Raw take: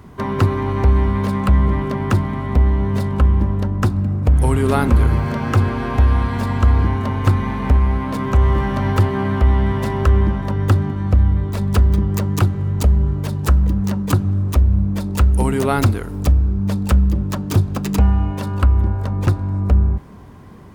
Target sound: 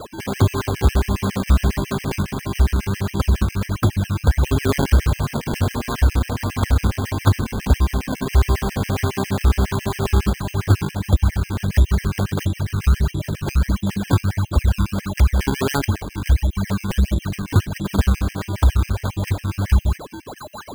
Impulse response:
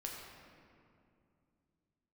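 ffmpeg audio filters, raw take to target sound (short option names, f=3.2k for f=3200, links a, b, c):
-af "aeval=exprs='val(0)+0.0316*sin(2*PI*4000*n/s)':c=same,acrusher=samples=24:mix=1:aa=0.000001:lfo=1:lforange=24:lforate=1.5,afftfilt=real='re*gt(sin(2*PI*7.3*pts/sr)*(1-2*mod(floor(b*sr/1024/1600),2)),0)':imag='im*gt(sin(2*PI*7.3*pts/sr)*(1-2*mod(floor(b*sr/1024/1600),2)),0)':win_size=1024:overlap=0.75"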